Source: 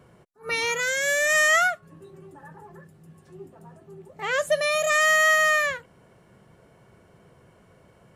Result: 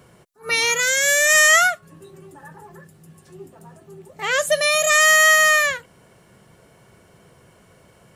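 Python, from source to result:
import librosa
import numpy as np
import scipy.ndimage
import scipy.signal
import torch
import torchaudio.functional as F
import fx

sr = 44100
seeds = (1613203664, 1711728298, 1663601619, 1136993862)

y = fx.high_shelf(x, sr, hz=2800.0, db=9.5)
y = y * librosa.db_to_amplitude(2.5)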